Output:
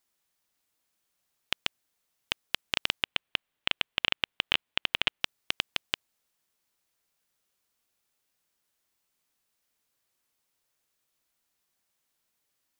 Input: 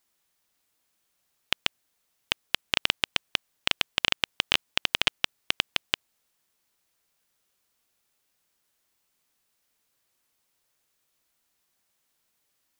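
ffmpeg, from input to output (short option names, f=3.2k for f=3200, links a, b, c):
-filter_complex "[0:a]asettb=1/sr,asplit=3[a][b][c];[a]atrim=end=3.034[d];[b]atrim=start=3.03:end=5.21,asetpts=PTS-STARTPTS,afade=t=in:d=0.004:c=qsin,afade=t=out:st=2.176:d=0.004:c=qsin,highshelf=f=4.1k:t=q:w=1.5:g=-7.5[e];[c]atrim=start=5.206[f];[d][e]acrossfade=d=0.004:c1=hsin:c2=qsin[g];[g][f]acrossfade=d=0.004:c1=qsin:c2=hsin,volume=-4dB"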